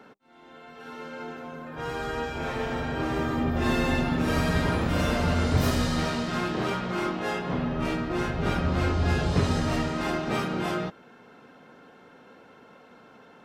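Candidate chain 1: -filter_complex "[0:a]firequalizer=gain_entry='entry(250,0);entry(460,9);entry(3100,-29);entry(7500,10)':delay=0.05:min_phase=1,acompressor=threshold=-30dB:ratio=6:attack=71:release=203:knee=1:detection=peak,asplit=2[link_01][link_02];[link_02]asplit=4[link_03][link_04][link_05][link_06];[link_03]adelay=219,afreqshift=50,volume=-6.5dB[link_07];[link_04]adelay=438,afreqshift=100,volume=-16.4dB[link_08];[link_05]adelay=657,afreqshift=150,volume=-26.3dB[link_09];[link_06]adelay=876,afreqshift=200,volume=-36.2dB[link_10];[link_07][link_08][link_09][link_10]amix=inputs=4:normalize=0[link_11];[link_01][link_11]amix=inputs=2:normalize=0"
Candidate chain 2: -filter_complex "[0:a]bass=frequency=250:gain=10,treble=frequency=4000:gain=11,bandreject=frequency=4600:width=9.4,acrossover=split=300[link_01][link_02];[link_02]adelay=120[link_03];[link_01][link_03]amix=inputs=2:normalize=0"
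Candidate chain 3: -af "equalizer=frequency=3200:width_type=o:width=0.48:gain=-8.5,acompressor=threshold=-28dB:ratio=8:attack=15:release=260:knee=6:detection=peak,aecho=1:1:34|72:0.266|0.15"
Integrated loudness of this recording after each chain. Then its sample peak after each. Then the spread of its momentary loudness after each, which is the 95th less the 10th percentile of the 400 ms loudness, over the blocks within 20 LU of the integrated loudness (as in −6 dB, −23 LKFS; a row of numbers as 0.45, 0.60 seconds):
−30.0, −21.5, −32.5 LKFS; −16.0, −3.5, −19.0 dBFS; 18, 15, 20 LU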